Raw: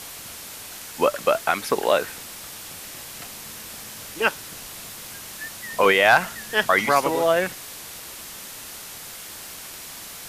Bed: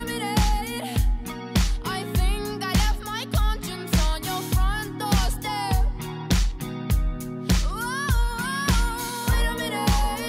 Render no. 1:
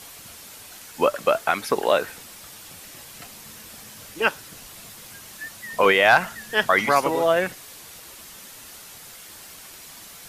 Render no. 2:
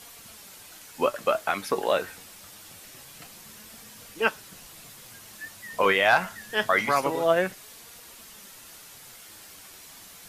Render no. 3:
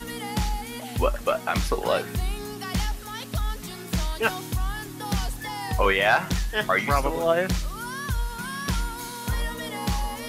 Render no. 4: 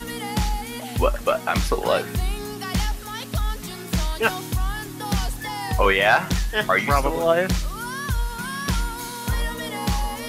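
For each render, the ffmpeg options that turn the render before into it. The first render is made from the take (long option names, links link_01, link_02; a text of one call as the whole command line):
ffmpeg -i in.wav -af "afftdn=noise_reduction=6:noise_floor=-39" out.wav
ffmpeg -i in.wav -af "flanger=delay=4.2:depth=6.7:regen=65:speed=0.25:shape=sinusoidal" out.wav
ffmpeg -i in.wav -i bed.wav -filter_complex "[1:a]volume=-5.5dB[link_01];[0:a][link_01]amix=inputs=2:normalize=0" out.wav
ffmpeg -i in.wav -af "volume=3dB" out.wav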